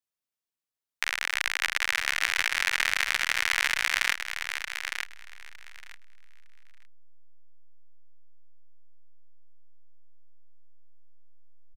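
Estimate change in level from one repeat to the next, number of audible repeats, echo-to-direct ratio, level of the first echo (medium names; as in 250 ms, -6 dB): -16.0 dB, 2, -7.0 dB, -7.0 dB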